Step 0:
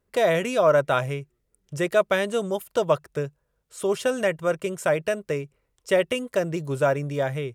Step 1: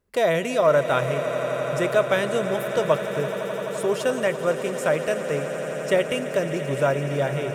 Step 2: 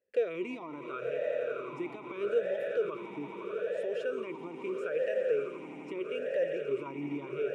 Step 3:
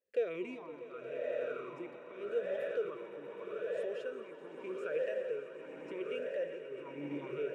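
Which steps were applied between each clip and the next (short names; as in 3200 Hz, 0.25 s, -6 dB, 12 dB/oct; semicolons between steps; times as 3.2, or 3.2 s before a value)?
swelling echo 85 ms, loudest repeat 8, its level -15 dB
limiter -18 dBFS, peak gain reduction 11.5 dB; vowel sweep e-u 0.78 Hz; gain +2.5 dB
tremolo triangle 0.86 Hz, depth 80%; swelling echo 0.128 s, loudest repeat 5, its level -17.5 dB; gain -2.5 dB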